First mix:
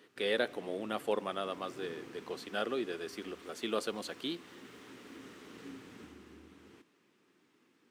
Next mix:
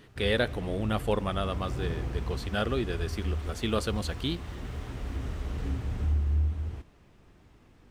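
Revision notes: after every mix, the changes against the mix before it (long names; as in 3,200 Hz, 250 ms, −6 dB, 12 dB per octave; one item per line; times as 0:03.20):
background: add parametric band 670 Hz +12 dB 0.92 octaves
master: remove four-pole ladder high-pass 220 Hz, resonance 20%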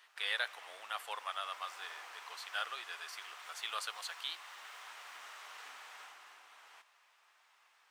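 speech −4.0 dB
master: add high-pass filter 910 Hz 24 dB per octave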